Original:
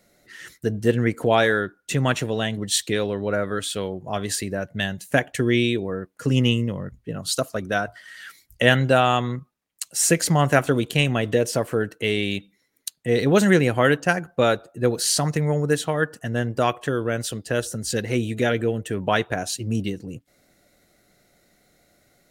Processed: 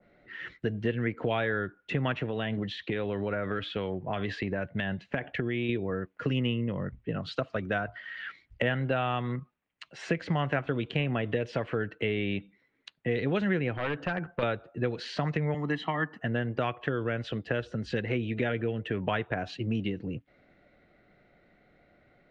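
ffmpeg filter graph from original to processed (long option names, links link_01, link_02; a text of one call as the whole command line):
ffmpeg -i in.wav -filter_complex "[0:a]asettb=1/sr,asplit=3[link_01][link_02][link_03];[link_01]atrim=end=2.254[link_04];[link_02]atrim=start=2.25:end=5.69,asetpts=PTS-STARTPTS,afade=type=in:duration=0.004:curve=qsin,afade=type=out:start_time=3.436:duration=0.004:curve=qsin,lowpass=6400,acompressor=threshold=-23dB:ratio=6:attack=3.2:release=140:knee=1:detection=peak[link_05];[link_03]atrim=start=5.686[link_06];[link_04][link_05]acrossfade=duration=0.004:curve1=hsin:curve2=qsin[link_07];[link_07][link_06]acrossfade=duration=0.004:curve1=qsin:curve2=hsin,asettb=1/sr,asplit=3[link_08][link_09][link_10];[link_08]atrim=end=13.734[link_11];[link_09]atrim=start=13.73:end=14.43,asetpts=PTS-STARTPTS,afade=type=in:duration=0.004:curve=qsin,afade=type=out:start_time=0.696:duration=0.004:curve=qsin,acompressor=threshold=-25dB:ratio=2:attack=3.2:release=140:knee=1:detection=peak,aeval=exprs='0.1*(abs(mod(val(0)/0.1+3,4)-2)-1)':channel_layout=same[link_12];[link_10]atrim=start=14.426[link_13];[link_11][link_12]acrossfade=duration=0.004:curve1=hsin:curve2=qsin[link_14];[link_14][link_13]acrossfade=duration=0.004:curve1=qsin:curve2=hsin,asettb=1/sr,asplit=3[link_15][link_16][link_17];[link_15]atrim=end=15.544[link_18];[link_16]atrim=start=15.54:end=16.19,asetpts=PTS-STARTPTS,afade=type=in:duration=0.004:curve=qsin,afade=type=out:start_time=0.646:duration=0.004:curve=qsin,highpass=frequency=190:width=0.5412,highpass=frequency=190:width=1.3066,aecho=1:1:1:0.77,atrim=end_sample=28665[link_19];[link_17]atrim=start=16.186[link_20];[link_18][link_19]acrossfade=duration=0.004:curve1=hsin:curve2=qsin[link_21];[link_21][link_20]acrossfade=duration=0.004:curve1=qsin:curve2=hsin,lowpass=frequency=2800:width=0.5412,lowpass=frequency=2800:width=1.3066,acrossover=split=140|1800[link_22][link_23][link_24];[link_22]acompressor=threshold=-38dB:ratio=4[link_25];[link_23]acompressor=threshold=-29dB:ratio=4[link_26];[link_24]acompressor=threshold=-44dB:ratio=4[link_27];[link_25][link_26][link_27]amix=inputs=3:normalize=0,adynamicequalizer=threshold=0.00562:dfrequency=1900:dqfactor=0.7:tfrequency=1900:tqfactor=0.7:attack=5:release=100:ratio=0.375:range=3:mode=boostabove:tftype=highshelf" out.wav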